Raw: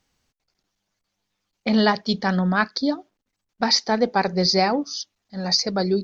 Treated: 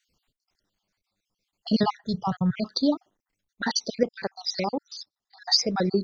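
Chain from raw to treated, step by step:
time-frequency cells dropped at random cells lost 53%
0:01.83–0:02.57: octave-band graphic EQ 125/250/500/4,000 Hz +11/−10/−5/−11 dB
0:04.03–0:05.42: output level in coarse steps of 13 dB

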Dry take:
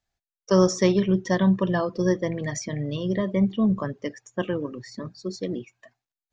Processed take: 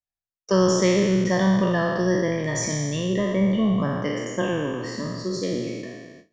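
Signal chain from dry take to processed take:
peak hold with a decay on every bin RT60 1.61 s
noise gate with hold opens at −36 dBFS
in parallel at −2 dB: downward compressor, threshold −25 dBFS, peak gain reduction 12 dB
on the sum: level −3.5 dB

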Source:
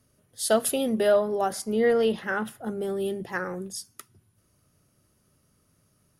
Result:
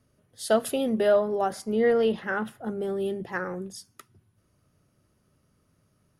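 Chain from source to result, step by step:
high-shelf EQ 5,100 Hz −10 dB

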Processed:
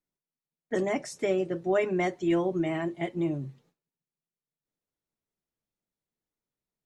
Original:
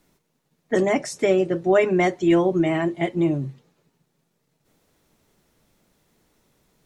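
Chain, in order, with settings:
noise gate with hold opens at −49 dBFS
level −8 dB

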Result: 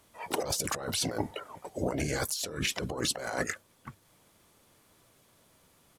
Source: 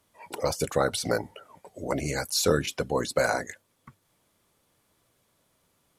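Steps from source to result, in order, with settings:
pitch-shifted copies added −5 semitones −10 dB, +5 semitones −15 dB
compressor whose output falls as the input rises −33 dBFS, ratio −1

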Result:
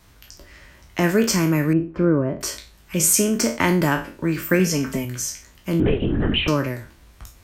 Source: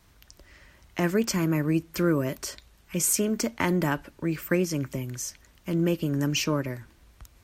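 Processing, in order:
peak hold with a decay on every bin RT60 0.36 s
0:01.73–0:02.41: low-pass filter 1,000 Hz 12 dB per octave
0:04.59–0:05.05: comb filter 4.5 ms, depth 80%
0:05.80–0:06.48: linear-prediction vocoder at 8 kHz whisper
level +5.5 dB

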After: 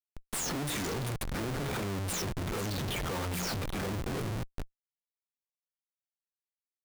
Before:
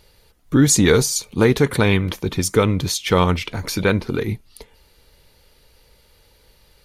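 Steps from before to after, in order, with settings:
every frequency bin delayed by itself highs early, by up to 357 ms
high-shelf EQ 7,800 Hz +9 dB
mains-hum notches 60/120/180/240/300/360/420 Hz
reversed playback
downward compressor 10 to 1, threshold −30 dBFS, peak gain reduction 20 dB
reversed playback
comparator with hysteresis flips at −36.5 dBFS
level +2 dB

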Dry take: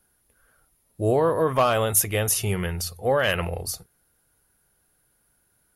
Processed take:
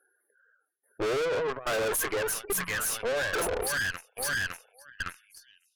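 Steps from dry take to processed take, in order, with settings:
0:01.25–0:01.80: compressor whose output falls as the input rises −26 dBFS, ratio −1
0:02.52–0:03.03: elliptic band-stop filter 180–7,200 Hz
on a send: delay with a high-pass on its return 559 ms, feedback 51%, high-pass 1,500 Hz, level −4 dB
on the sum: high-pass filter sweep 400 Hz → 3,700 Hz, 0:04.69–0:05.45
shaped tremolo saw down 1.2 Hz, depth 95%
parametric band 1,600 Hz +12 dB 0.54 octaves
leveller curve on the samples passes 2
gate on every frequency bin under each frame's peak −15 dB strong
tube saturation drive 31 dB, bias 0.75
level +4 dB

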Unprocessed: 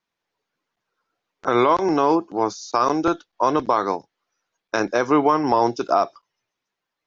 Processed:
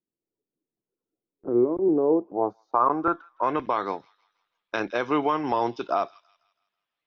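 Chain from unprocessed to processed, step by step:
low-pass filter sweep 350 Hz → 3,200 Hz, 0:01.80–0:03.86
delay with a high-pass on its return 163 ms, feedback 44%, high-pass 2,700 Hz, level −15.5 dB
level −7 dB

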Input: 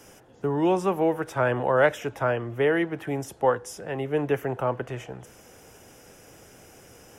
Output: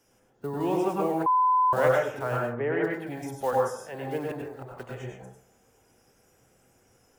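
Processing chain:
one scale factor per block 5 bits
noise reduction from a noise print of the clip's start 10 dB
0:02.39–0:02.83: low-pass filter 1,700 Hz → 2,900 Hz 24 dB per octave
0:04.24–0:04.77: volume swells 541 ms
dense smooth reverb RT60 0.57 s, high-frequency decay 0.35×, pre-delay 85 ms, DRR −1.5 dB
0:01.26–0:01.73: beep over 1,010 Hz −11.5 dBFS
level −7 dB

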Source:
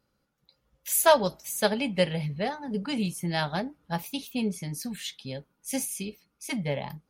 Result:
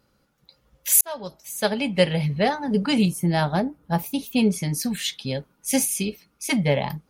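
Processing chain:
0:01.01–0:02.51: fade in
0:03.05–0:04.33: parametric band 3,400 Hz −9 dB 2.9 octaves
level +9 dB

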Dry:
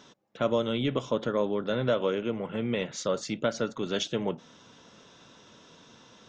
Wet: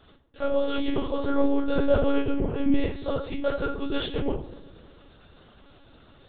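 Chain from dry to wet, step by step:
0:01.21–0:02.82: low-shelf EQ 400 Hz +7 dB
on a send: feedback echo with a low-pass in the loop 124 ms, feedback 72%, low-pass 1,100 Hz, level −17 dB
on the sum: rectangular room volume 41 cubic metres, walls mixed, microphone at 1.5 metres
one-pitch LPC vocoder at 8 kHz 280 Hz
level −8 dB

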